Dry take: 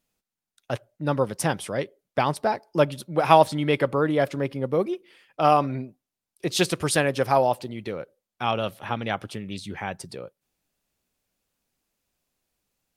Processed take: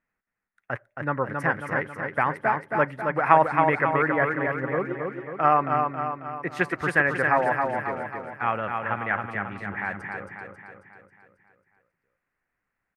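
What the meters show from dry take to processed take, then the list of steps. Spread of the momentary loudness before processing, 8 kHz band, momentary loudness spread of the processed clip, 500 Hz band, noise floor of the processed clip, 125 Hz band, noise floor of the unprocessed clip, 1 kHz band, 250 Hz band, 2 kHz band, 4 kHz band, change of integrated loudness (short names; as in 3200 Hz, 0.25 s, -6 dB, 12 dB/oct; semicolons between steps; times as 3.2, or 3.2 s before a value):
15 LU, under -20 dB, 12 LU, -3.0 dB, -82 dBFS, -3.5 dB, under -85 dBFS, +1.5 dB, -3.0 dB, +7.5 dB, under -15 dB, 0.0 dB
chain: EQ curve 630 Hz 0 dB, 1900 Hz +14 dB, 3500 Hz -17 dB; on a send: feedback echo 0.271 s, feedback 53%, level -4.5 dB; on the sum: gain -5 dB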